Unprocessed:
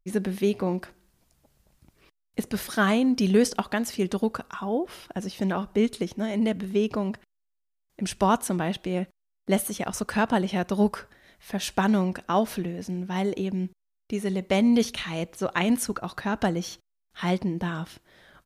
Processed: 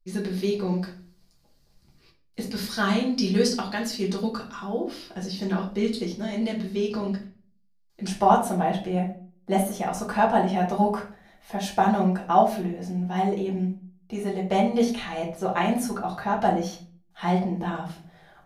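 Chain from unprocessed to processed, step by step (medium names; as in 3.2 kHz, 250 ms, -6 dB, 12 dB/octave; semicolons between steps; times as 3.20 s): peaking EQ 4.6 kHz +13 dB 0.61 oct, from 8.07 s 750 Hz; simulated room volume 32 m³, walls mixed, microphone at 0.78 m; trim -7.5 dB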